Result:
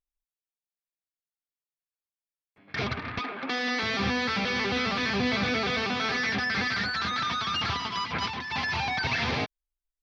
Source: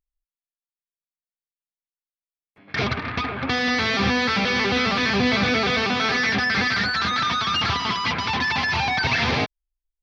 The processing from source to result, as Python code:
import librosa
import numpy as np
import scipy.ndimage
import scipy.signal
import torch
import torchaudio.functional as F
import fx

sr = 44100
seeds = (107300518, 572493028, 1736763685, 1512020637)

y = fx.highpass(x, sr, hz=220.0, slope=24, at=(3.19, 3.83))
y = fx.over_compress(y, sr, threshold_db=-27.0, ratio=-0.5, at=(7.86, 8.51), fade=0.02)
y = y * librosa.db_to_amplitude(-6.5)